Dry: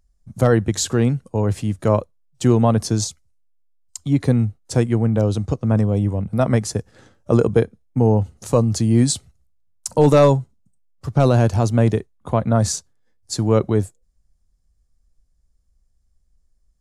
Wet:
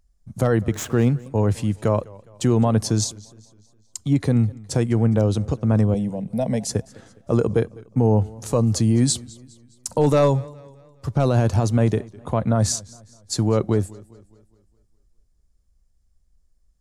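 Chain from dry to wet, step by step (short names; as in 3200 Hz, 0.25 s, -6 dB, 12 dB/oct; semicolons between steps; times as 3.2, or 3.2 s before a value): 0.72–1.26 median filter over 9 samples; limiter -9.5 dBFS, peak gain reduction 5 dB; 5.94–6.69 fixed phaser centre 340 Hz, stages 6; warbling echo 0.206 s, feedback 47%, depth 109 cents, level -22.5 dB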